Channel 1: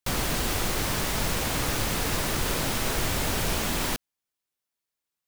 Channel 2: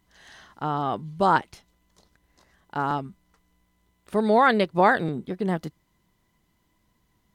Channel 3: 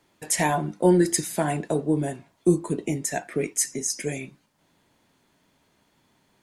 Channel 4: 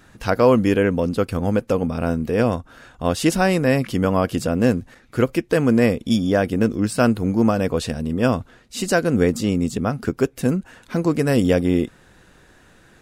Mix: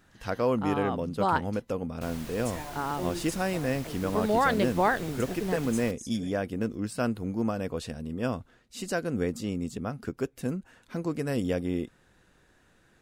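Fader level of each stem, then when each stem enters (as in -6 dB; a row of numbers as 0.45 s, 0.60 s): -16.5 dB, -6.0 dB, -18.0 dB, -11.5 dB; 1.95 s, 0.00 s, 2.15 s, 0.00 s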